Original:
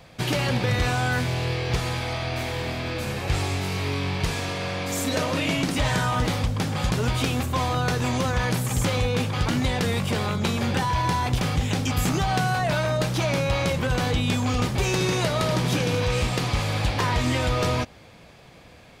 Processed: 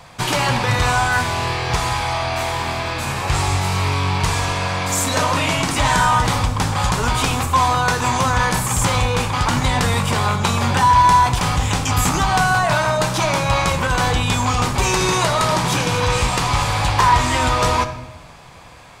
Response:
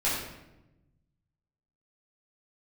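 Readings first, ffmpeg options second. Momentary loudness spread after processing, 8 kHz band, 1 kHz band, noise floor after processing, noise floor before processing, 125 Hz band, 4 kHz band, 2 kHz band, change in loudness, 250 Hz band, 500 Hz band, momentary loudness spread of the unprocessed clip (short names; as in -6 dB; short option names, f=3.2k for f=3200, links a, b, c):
6 LU, +10.0 dB, +12.0 dB, -40 dBFS, -49 dBFS, +4.0 dB, +6.5 dB, +8.0 dB, +7.0 dB, +2.0 dB, +3.5 dB, 4 LU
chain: -filter_complex "[0:a]equalizer=f=250:t=o:w=1:g=-3,equalizer=f=500:t=o:w=1:g=-4,equalizer=f=1k:t=o:w=1:g=10,equalizer=f=8k:t=o:w=1:g=7,asplit=2[a][b];[1:a]atrim=start_sample=2205[c];[b][c]afir=irnorm=-1:irlink=0,volume=-16.5dB[d];[a][d]amix=inputs=2:normalize=0,volume=3dB"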